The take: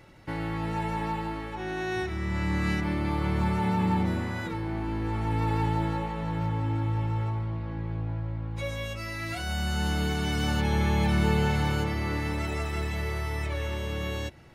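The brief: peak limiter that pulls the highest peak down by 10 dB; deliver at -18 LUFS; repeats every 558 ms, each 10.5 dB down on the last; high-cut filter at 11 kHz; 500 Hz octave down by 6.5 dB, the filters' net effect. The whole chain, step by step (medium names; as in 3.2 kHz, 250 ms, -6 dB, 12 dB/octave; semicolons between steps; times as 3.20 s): low-pass 11 kHz; peaking EQ 500 Hz -9 dB; peak limiter -23.5 dBFS; feedback delay 558 ms, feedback 30%, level -10.5 dB; trim +14.5 dB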